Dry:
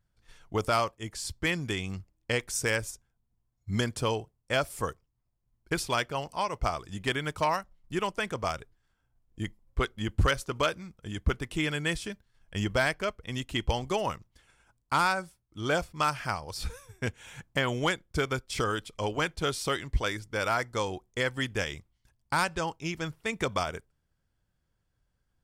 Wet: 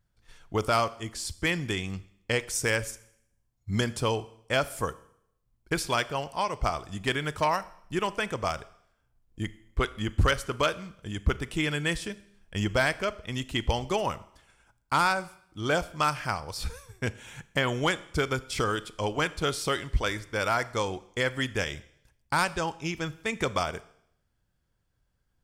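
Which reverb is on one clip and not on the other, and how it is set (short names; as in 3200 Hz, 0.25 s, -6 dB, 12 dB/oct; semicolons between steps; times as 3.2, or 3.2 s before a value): Schroeder reverb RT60 0.71 s, combs from 27 ms, DRR 16.5 dB; gain +1.5 dB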